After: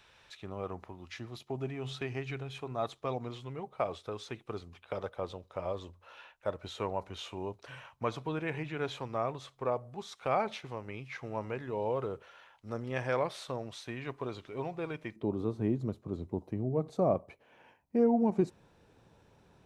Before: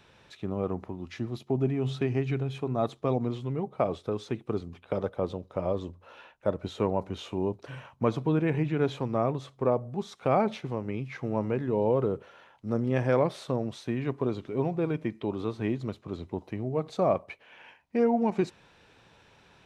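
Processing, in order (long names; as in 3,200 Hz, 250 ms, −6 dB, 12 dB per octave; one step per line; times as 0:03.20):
parametric band 210 Hz −13 dB 2.8 octaves, from 0:15.16 2,700 Hz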